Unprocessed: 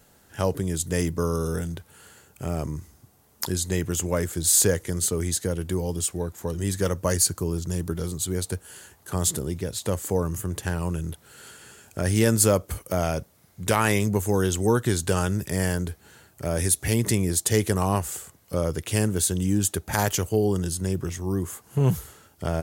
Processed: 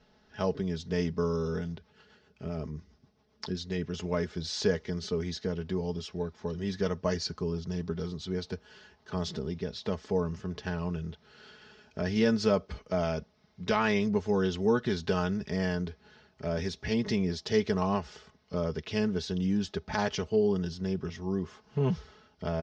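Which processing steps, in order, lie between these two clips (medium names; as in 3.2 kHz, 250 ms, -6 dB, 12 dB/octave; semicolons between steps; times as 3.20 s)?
Chebyshev low-pass 5.5 kHz, order 5; comb 4.7 ms, depth 66%; 1.77–3.94 s: rotary cabinet horn 7.5 Hz; trim -6 dB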